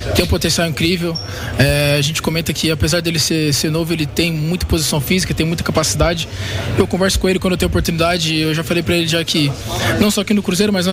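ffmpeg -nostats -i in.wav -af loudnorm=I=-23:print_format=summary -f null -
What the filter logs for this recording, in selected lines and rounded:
Input Integrated:    -15.9 LUFS
Input True Peak:      -1.5 dBTP
Input LRA:             1.1 LU
Input Threshold:     -25.9 LUFS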